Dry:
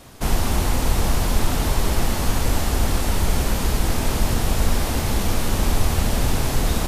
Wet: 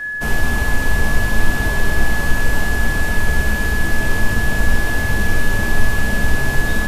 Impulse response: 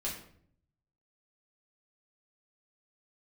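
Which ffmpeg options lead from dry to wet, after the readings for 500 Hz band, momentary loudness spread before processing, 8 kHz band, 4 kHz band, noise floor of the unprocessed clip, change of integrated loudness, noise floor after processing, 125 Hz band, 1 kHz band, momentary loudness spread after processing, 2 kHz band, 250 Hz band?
+0.5 dB, 1 LU, −2.5 dB, −1.5 dB, −24 dBFS, +3.5 dB, −20 dBFS, +1.0 dB, 0.0 dB, 1 LU, +14.5 dB, +1.0 dB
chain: -filter_complex "[0:a]aeval=exprs='val(0)+0.0501*sin(2*PI*1700*n/s)':channel_layout=same,asplit=2[link_01][link_02];[link_02]highshelf=frequency=3800:width_type=q:width=1.5:gain=-7[link_03];[1:a]atrim=start_sample=2205[link_04];[link_03][link_04]afir=irnorm=-1:irlink=0,volume=-3.5dB[link_05];[link_01][link_05]amix=inputs=2:normalize=0,volume=-4dB"

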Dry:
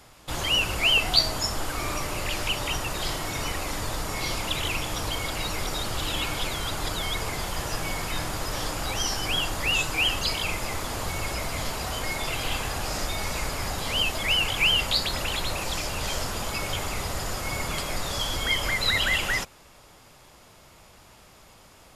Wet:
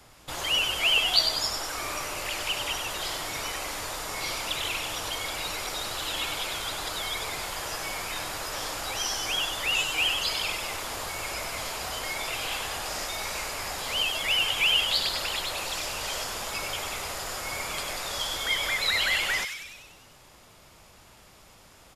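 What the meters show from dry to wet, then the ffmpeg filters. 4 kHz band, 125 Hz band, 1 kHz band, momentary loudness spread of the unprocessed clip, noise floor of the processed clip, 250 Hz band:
−0.5 dB, −12.5 dB, −2.0 dB, 9 LU, −54 dBFS, −9.0 dB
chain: -filter_complex "[0:a]acrossover=split=380|1100[link_01][link_02][link_03];[link_01]acompressor=threshold=-41dB:ratio=6[link_04];[link_03]asplit=9[link_05][link_06][link_07][link_08][link_09][link_10][link_11][link_12][link_13];[link_06]adelay=97,afreqshift=120,volume=-6dB[link_14];[link_07]adelay=194,afreqshift=240,volume=-10.6dB[link_15];[link_08]adelay=291,afreqshift=360,volume=-15.2dB[link_16];[link_09]adelay=388,afreqshift=480,volume=-19.7dB[link_17];[link_10]adelay=485,afreqshift=600,volume=-24.3dB[link_18];[link_11]adelay=582,afreqshift=720,volume=-28.9dB[link_19];[link_12]adelay=679,afreqshift=840,volume=-33.5dB[link_20];[link_13]adelay=776,afreqshift=960,volume=-38.1dB[link_21];[link_05][link_14][link_15][link_16][link_17][link_18][link_19][link_20][link_21]amix=inputs=9:normalize=0[link_22];[link_04][link_02][link_22]amix=inputs=3:normalize=0,volume=-2dB"

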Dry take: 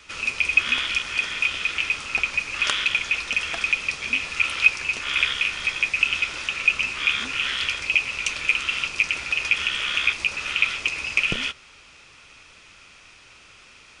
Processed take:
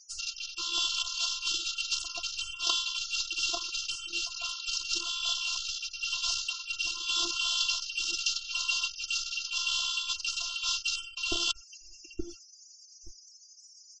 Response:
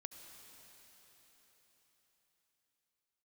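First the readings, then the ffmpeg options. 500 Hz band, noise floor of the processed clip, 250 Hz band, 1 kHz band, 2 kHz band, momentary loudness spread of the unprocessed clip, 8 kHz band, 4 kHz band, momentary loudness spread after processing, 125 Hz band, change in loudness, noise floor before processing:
−8.0 dB, −55 dBFS, −6.0 dB, −8.5 dB, −15.0 dB, 5 LU, +3.0 dB, −2.0 dB, 6 LU, below −10 dB, −8.0 dB, −50 dBFS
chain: -filter_complex "[0:a]aemphasis=mode=reproduction:type=50kf,asplit=2[link_01][link_02];[link_02]adelay=874,lowpass=frequency=880:poles=1,volume=-6.5dB,asplit=2[link_03][link_04];[link_04]adelay=874,lowpass=frequency=880:poles=1,volume=0.33,asplit=2[link_05][link_06];[link_06]adelay=874,lowpass=frequency=880:poles=1,volume=0.33,asplit=2[link_07][link_08];[link_08]adelay=874,lowpass=frequency=880:poles=1,volume=0.33[link_09];[link_01][link_03][link_05][link_07][link_09]amix=inputs=5:normalize=0,afwtdn=0.0224,acrossover=split=4200[link_10][link_11];[link_11]acompressor=threshold=-54dB:ratio=4:attack=1:release=60[link_12];[link_10][link_12]amix=inputs=2:normalize=0,highshelf=frequency=2300:gain=11.5,areverse,acompressor=threshold=-29dB:ratio=10,areverse,aexciter=amount=6:drive=8.6:freq=4600,afftfilt=real='re*gte(hypot(re,im),0.00501)':imag='im*gte(hypot(re,im),0.00501)':win_size=1024:overlap=0.75,afftfilt=real='hypot(re,im)*cos(PI*b)':imag='0':win_size=512:overlap=0.75,asuperstop=centerf=1900:order=20:qfactor=1.4,volume=8.5dB"

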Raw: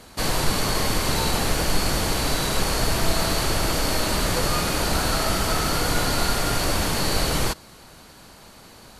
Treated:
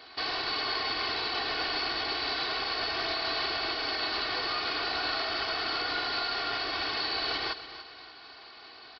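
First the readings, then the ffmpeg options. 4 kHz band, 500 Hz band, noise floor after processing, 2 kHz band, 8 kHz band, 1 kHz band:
−3.5 dB, −10.5 dB, −50 dBFS, −3.5 dB, below −30 dB, −6.5 dB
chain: -filter_complex "[0:a]highpass=frequency=1100:poles=1,aecho=1:1:2.7:0.73,alimiter=limit=-20dB:level=0:latency=1:release=244,asplit=2[link_01][link_02];[link_02]aecho=0:1:286|572|858|1144:0.224|0.0851|0.0323|0.0123[link_03];[link_01][link_03]amix=inputs=2:normalize=0,aresample=11025,aresample=44100"

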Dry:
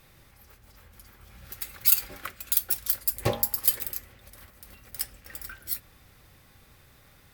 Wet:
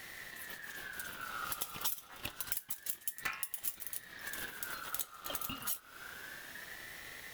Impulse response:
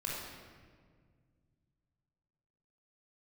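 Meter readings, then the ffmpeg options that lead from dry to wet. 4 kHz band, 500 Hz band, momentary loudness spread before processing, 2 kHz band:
−6.0 dB, −14.5 dB, 19 LU, +2.0 dB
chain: -af "acompressor=threshold=-42dB:ratio=16,aeval=exprs='val(0)*sin(2*PI*1600*n/s+1600*0.2/0.28*sin(2*PI*0.28*n/s))':channel_layout=same,volume=10.5dB"

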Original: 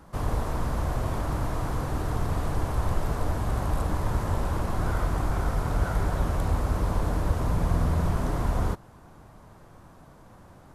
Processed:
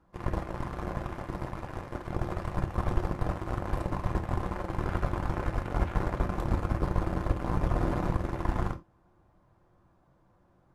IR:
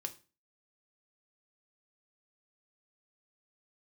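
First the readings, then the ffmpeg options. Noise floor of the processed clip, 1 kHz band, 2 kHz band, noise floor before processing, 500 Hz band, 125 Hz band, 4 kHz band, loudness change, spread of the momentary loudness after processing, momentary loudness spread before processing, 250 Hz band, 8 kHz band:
−65 dBFS, −3.0 dB, −3.0 dB, −51 dBFS, −2.5 dB, −5.0 dB, −7.0 dB, −4.5 dB, 7 LU, 4 LU, −2.0 dB, −12.5 dB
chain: -filter_complex "[0:a]lowpass=frequency=2400:poles=1,aeval=exprs='0.282*(cos(1*acos(clip(val(0)/0.282,-1,1)))-cos(1*PI/2))+0.0501*(cos(7*acos(clip(val(0)/0.282,-1,1)))-cos(7*PI/2))':channel_layout=same[link_01];[1:a]atrim=start_sample=2205,afade=type=out:start_time=0.14:duration=0.01,atrim=end_sample=6615[link_02];[link_01][link_02]afir=irnorm=-1:irlink=0"

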